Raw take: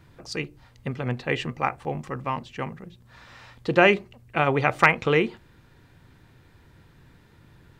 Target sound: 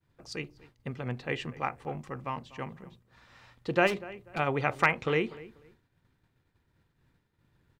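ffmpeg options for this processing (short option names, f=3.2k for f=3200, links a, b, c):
-filter_complex "[0:a]asplit=2[a][b];[b]adelay=244,lowpass=f=2.3k:p=1,volume=-18.5dB,asplit=2[c][d];[d]adelay=244,lowpass=f=2.3k:p=1,volume=0.29[e];[a][c][e]amix=inputs=3:normalize=0,agate=range=-33dB:threshold=-45dB:ratio=3:detection=peak,asplit=3[f][g][h];[f]afade=t=out:st=3.86:d=0.02[i];[g]volume=21dB,asoftclip=hard,volume=-21dB,afade=t=in:st=3.86:d=0.02,afade=t=out:st=4.38:d=0.02[j];[h]afade=t=in:st=4.38:d=0.02[k];[i][j][k]amix=inputs=3:normalize=0,volume=-7dB"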